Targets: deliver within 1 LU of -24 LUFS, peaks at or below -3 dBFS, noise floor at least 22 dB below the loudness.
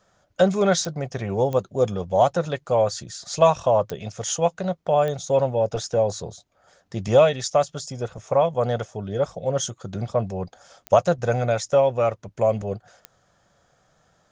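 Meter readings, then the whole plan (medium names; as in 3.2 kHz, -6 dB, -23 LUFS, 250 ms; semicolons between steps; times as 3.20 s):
clicks found 6; loudness -23.0 LUFS; peak level -4.5 dBFS; loudness target -24.0 LUFS
-> de-click; trim -1 dB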